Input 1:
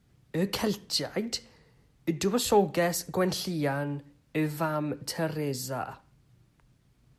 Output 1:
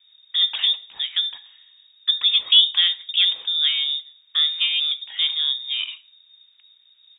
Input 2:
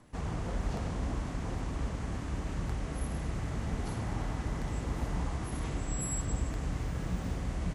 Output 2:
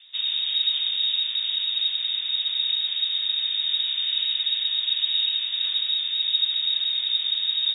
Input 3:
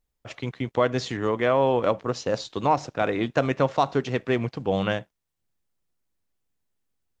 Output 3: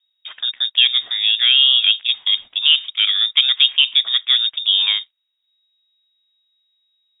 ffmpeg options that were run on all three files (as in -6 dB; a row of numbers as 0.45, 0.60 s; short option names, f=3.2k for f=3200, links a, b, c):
-filter_complex "[0:a]acrossover=split=3000[a][b];[b]acompressor=threshold=-47dB:ratio=4:attack=1:release=60[c];[a][c]amix=inputs=2:normalize=0,lowpass=f=3.2k:t=q:w=0.5098,lowpass=f=3.2k:t=q:w=0.6013,lowpass=f=3.2k:t=q:w=0.9,lowpass=f=3.2k:t=q:w=2.563,afreqshift=-3800,crystalizer=i=8:c=0,volume=-4.5dB"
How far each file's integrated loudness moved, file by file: +11.0, +14.0, +11.0 LU